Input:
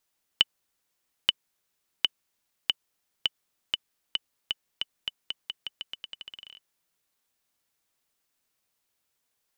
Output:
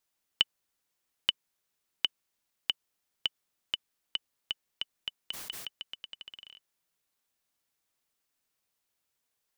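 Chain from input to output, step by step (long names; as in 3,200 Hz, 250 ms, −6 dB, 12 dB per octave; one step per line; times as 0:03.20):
0:05.23–0:05.67: level that may fall only so fast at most 67 dB per second
level −3.5 dB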